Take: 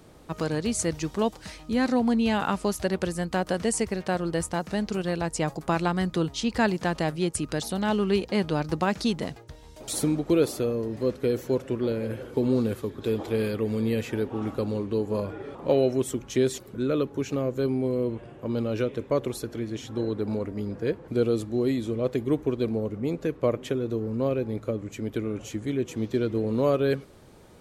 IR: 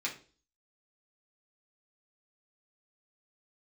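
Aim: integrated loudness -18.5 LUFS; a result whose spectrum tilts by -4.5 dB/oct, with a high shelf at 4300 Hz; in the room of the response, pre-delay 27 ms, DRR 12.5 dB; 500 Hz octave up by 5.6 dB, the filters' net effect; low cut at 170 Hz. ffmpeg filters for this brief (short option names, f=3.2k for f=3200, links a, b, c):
-filter_complex "[0:a]highpass=170,equalizer=f=500:t=o:g=7,highshelf=f=4.3k:g=-6.5,asplit=2[a][b];[1:a]atrim=start_sample=2205,adelay=27[c];[b][c]afir=irnorm=-1:irlink=0,volume=-16.5dB[d];[a][d]amix=inputs=2:normalize=0,volume=5.5dB"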